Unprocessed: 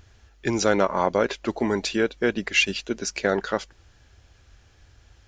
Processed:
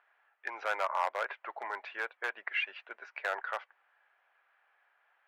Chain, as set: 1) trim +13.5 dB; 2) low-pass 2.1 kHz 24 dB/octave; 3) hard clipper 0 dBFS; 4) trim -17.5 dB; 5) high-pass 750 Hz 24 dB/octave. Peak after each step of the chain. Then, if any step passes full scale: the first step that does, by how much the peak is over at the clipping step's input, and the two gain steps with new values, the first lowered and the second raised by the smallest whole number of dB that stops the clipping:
+7.5 dBFS, +7.5 dBFS, 0.0 dBFS, -17.5 dBFS, -18.0 dBFS; step 1, 7.5 dB; step 1 +5.5 dB, step 4 -9.5 dB

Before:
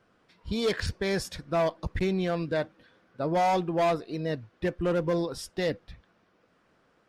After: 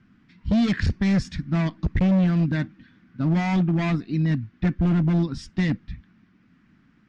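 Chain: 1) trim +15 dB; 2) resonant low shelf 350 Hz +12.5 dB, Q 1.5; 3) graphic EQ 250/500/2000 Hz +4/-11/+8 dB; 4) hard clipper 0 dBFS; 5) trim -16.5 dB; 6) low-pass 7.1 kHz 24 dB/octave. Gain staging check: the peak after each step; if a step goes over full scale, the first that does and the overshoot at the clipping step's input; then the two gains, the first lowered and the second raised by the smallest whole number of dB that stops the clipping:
-3.0 dBFS, +7.5 dBFS, +8.5 dBFS, 0.0 dBFS, -16.5 dBFS, -15.5 dBFS; step 2, 8.5 dB; step 1 +6 dB, step 5 -7.5 dB

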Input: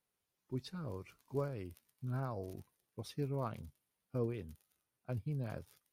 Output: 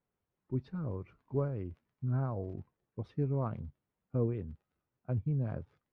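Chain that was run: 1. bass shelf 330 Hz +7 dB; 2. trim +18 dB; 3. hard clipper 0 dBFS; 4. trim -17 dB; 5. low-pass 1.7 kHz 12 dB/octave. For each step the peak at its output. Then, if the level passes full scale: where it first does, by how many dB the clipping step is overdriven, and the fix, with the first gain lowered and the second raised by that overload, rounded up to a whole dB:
-22.0 dBFS, -4.0 dBFS, -4.0 dBFS, -21.0 dBFS, -21.0 dBFS; nothing clips

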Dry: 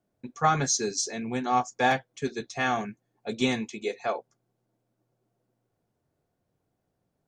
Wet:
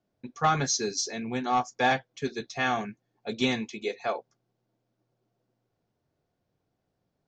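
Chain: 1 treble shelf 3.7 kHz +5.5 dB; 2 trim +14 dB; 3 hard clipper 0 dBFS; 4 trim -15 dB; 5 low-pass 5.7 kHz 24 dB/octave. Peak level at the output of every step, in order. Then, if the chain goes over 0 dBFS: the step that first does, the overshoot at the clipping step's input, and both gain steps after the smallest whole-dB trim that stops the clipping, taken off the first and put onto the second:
-9.5 dBFS, +4.5 dBFS, 0.0 dBFS, -15.0 dBFS, -14.0 dBFS; step 2, 4.5 dB; step 2 +9 dB, step 4 -10 dB

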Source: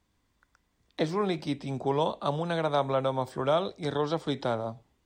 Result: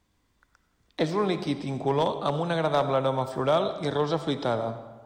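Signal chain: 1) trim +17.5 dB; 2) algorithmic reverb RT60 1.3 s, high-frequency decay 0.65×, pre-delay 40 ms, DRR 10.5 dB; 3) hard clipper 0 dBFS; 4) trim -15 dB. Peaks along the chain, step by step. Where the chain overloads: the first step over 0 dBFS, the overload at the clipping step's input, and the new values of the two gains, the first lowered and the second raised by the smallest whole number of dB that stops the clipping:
+4.0 dBFS, +4.5 dBFS, 0.0 dBFS, -15.0 dBFS; step 1, 4.5 dB; step 1 +12.5 dB, step 4 -10 dB

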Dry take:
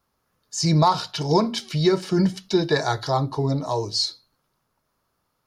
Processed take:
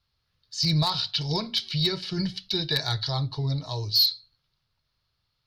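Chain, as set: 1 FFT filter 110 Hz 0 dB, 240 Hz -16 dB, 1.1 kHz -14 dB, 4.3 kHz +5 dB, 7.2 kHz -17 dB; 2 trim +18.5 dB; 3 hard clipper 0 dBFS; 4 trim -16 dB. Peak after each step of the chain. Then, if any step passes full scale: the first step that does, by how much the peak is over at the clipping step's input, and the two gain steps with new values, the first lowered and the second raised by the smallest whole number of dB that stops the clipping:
-9.0 dBFS, +9.5 dBFS, 0.0 dBFS, -16.0 dBFS; step 2, 9.5 dB; step 2 +8.5 dB, step 4 -6 dB

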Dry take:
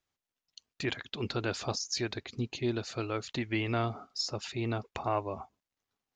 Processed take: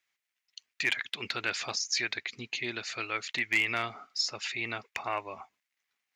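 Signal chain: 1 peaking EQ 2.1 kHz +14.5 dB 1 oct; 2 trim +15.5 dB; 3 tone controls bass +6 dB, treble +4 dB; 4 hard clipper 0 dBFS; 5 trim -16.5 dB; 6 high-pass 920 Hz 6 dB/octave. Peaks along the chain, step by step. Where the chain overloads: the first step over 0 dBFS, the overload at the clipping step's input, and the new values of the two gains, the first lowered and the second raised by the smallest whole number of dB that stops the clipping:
-10.0 dBFS, +5.5 dBFS, +6.5 dBFS, 0.0 dBFS, -16.5 dBFS, -14.0 dBFS; step 2, 6.5 dB; step 2 +8.5 dB, step 5 -9.5 dB

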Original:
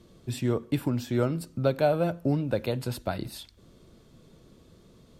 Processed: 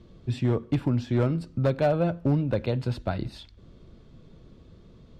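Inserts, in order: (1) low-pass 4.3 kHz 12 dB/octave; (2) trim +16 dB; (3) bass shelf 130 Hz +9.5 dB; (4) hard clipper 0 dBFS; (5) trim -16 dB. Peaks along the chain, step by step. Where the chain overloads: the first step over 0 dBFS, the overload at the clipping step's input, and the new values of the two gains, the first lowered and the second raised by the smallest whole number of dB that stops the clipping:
-11.5 dBFS, +4.5 dBFS, +5.5 dBFS, 0.0 dBFS, -16.0 dBFS; step 2, 5.5 dB; step 2 +10 dB, step 5 -10 dB

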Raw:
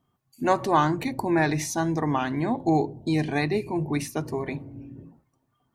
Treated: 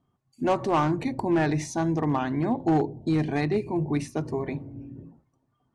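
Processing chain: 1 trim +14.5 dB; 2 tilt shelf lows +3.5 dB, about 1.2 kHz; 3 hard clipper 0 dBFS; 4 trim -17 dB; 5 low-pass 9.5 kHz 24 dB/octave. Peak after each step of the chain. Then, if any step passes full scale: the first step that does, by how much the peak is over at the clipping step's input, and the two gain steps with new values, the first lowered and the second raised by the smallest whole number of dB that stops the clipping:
+5.5 dBFS, +7.0 dBFS, 0.0 dBFS, -17.0 dBFS, -16.5 dBFS; step 1, 7.0 dB; step 1 +7.5 dB, step 4 -10 dB

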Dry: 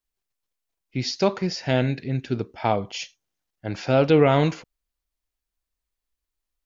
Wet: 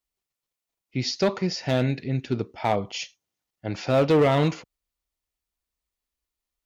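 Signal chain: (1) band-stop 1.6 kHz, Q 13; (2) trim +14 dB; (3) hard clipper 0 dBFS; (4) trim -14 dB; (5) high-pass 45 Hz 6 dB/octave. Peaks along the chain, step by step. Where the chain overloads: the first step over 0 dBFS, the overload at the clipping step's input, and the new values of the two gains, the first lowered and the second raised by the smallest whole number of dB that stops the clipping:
-6.0 dBFS, +8.0 dBFS, 0.0 dBFS, -14.0 dBFS, -12.0 dBFS; step 2, 8.0 dB; step 2 +6 dB, step 4 -6 dB

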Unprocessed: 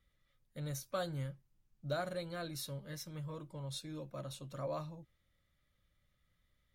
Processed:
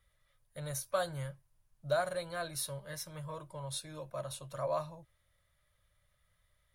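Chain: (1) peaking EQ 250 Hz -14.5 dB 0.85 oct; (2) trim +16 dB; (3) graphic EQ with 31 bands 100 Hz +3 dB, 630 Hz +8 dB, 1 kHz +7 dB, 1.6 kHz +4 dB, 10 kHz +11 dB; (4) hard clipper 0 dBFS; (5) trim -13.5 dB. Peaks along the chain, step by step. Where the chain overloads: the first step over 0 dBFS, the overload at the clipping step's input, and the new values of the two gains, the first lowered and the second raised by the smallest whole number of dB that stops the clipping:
-25.5 dBFS, -9.5 dBFS, -5.5 dBFS, -5.5 dBFS, -19.0 dBFS; nothing clips

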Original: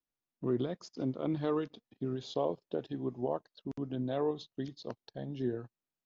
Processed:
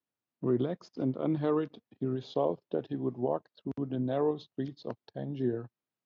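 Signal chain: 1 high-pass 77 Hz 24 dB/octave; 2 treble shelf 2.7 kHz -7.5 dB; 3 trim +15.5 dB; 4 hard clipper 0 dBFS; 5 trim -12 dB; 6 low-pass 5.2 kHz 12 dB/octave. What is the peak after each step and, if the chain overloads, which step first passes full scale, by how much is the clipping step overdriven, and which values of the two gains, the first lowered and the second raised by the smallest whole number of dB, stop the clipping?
-19.5 dBFS, -20.0 dBFS, -4.5 dBFS, -4.5 dBFS, -16.5 dBFS, -16.5 dBFS; nothing clips

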